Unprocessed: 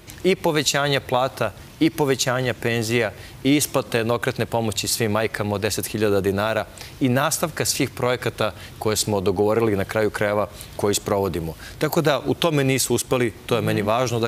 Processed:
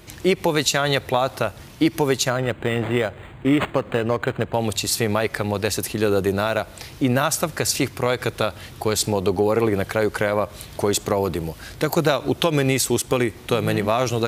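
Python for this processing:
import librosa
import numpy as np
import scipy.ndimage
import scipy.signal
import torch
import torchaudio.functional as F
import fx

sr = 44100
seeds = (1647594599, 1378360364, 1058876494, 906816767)

y = fx.resample_linear(x, sr, factor=8, at=(2.3, 4.54))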